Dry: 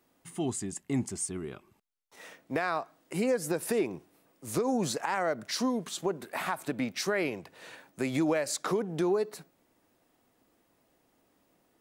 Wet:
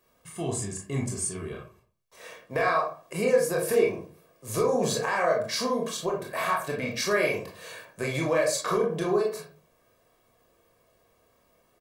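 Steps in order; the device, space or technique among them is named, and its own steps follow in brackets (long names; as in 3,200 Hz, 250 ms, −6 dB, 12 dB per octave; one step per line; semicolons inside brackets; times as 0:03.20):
microphone above a desk (comb filter 1.8 ms, depth 63%; convolution reverb RT60 0.40 s, pre-delay 22 ms, DRR −1.5 dB)
0:07.11–0:07.85: high-shelf EQ 6,100 Hz +8.5 dB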